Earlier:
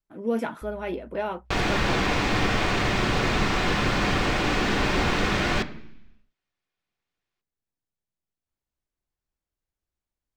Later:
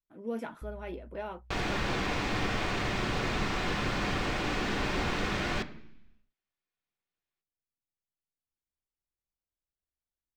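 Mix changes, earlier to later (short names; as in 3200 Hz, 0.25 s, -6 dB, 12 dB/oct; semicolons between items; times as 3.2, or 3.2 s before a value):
speech -9.5 dB; second sound -7.5 dB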